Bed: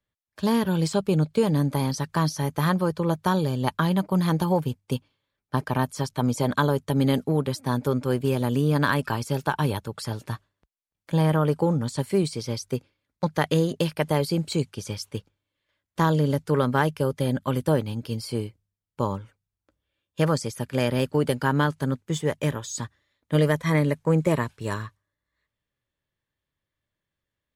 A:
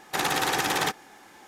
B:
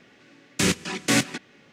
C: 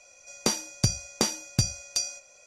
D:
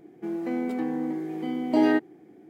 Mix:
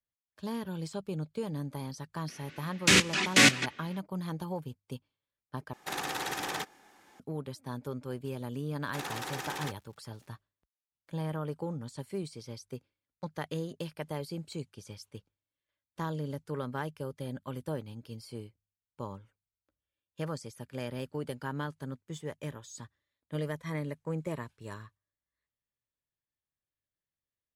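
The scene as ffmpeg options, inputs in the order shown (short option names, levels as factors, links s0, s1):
-filter_complex "[1:a]asplit=2[s0][s1];[0:a]volume=0.2[s2];[2:a]equalizer=f=2600:w=0.48:g=8[s3];[s1]aeval=exprs='val(0)*gte(abs(val(0)),0.00708)':c=same[s4];[s2]asplit=2[s5][s6];[s5]atrim=end=5.734[s7];[s0]atrim=end=1.47,asetpts=PTS-STARTPTS,volume=0.335[s8];[s6]atrim=start=7.196[s9];[s3]atrim=end=1.72,asetpts=PTS-STARTPTS,volume=0.668,afade=t=in:d=0.004:c=hsin,afade=t=out:st=1.716:d=0.004:c=hsin,adelay=2280[s10];[s4]atrim=end=1.47,asetpts=PTS-STARTPTS,volume=0.224,afade=t=in:d=0.004:c=hsin,afade=t=out:st=1.466:d=0.004:c=hsin,adelay=8800[s11];[s7][s8]acrossfade=d=0.004:c1=hsin:c2=hsin[s12];[s12][s9]acrossfade=d=0.004:c1=hsin:c2=hsin[s13];[s13][s10][s11]amix=inputs=3:normalize=0"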